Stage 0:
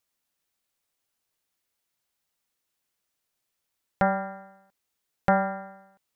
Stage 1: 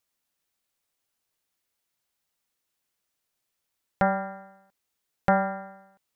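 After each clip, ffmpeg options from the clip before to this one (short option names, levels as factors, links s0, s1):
-af anull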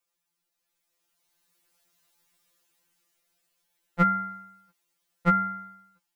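-af "dynaudnorm=f=510:g=5:m=4.47,afftfilt=real='re*2.83*eq(mod(b,8),0)':imag='im*2.83*eq(mod(b,8),0)':win_size=2048:overlap=0.75"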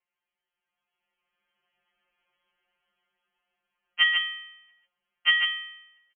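-af "aecho=1:1:145:0.631,lowpass=f=2800:t=q:w=0.5098,lowpass=f=2800:t=q:w=0.6013,lowpass=f=2800:t=q:w=0.9,lowpass=f=2800:t=q:w=2.563,afreqshift=-3300"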